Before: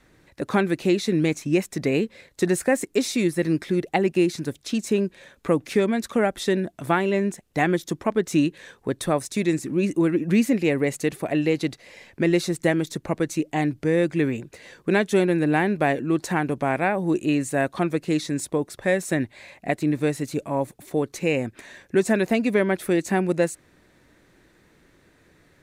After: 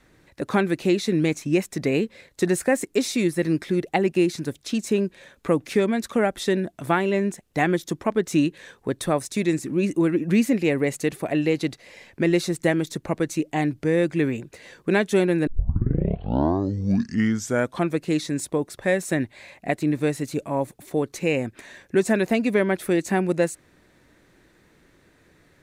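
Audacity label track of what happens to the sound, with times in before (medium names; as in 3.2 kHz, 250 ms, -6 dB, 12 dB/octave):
15.470000	15.470000	tape start 2.39 s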